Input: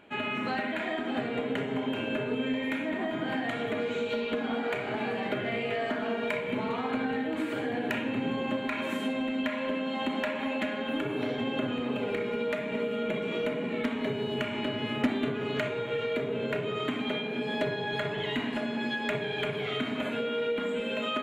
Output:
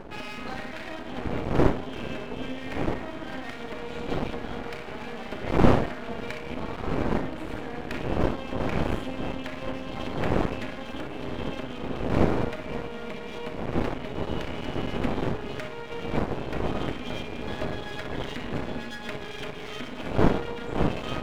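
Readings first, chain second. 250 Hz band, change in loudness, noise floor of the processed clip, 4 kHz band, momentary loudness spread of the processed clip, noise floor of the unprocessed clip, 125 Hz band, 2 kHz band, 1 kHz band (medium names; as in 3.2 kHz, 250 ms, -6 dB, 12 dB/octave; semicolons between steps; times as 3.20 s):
+0.5 dB, +0.5 dB, -37 dBFS, -3.5 dB, 12 LU, -35 dBFS, +9.5 dB, -3.5 dB, +2.0 dB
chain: wind noise 400 Hz -25 dBFS; half-wave rectifier; trim -1 dB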